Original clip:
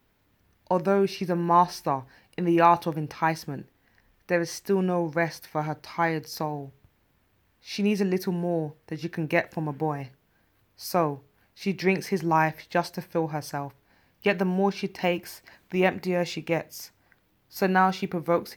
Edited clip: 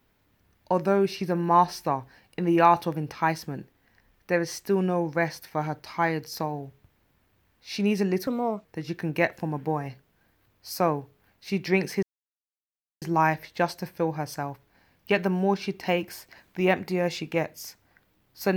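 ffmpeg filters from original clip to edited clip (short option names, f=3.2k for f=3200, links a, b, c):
-filter_complex "[0:a]asplit=4[a][b][c][d];[a]atrim=end=8.274[e];[b]atrim=start=8.27:end=8.79,asetpts=PTS-STARTPTS,asetrate=60858,aresample=44100,atrim=end_sample=16617,asetpts=PTS-STARTPTS[f];[c]atrim=start=8.786:end=12.17,asetpts=PTS-STARTPTS,afade=t=out:st=3.38:d=0.004:c=hsin,apad=pad_dur=0.99[g];[d]atrim=start=12.17,asetpts=PTS-STARTPTS,afade=t=in:d=0.004:c=hsin[h];[e][f]acrossfade=d=0.004:c1=hsin:c2=hsin[i];[g][h]concat=n=2:v=0:a=1[j];[i][j]acrossfade=d=0.004:c1=hsin:c2=hsin"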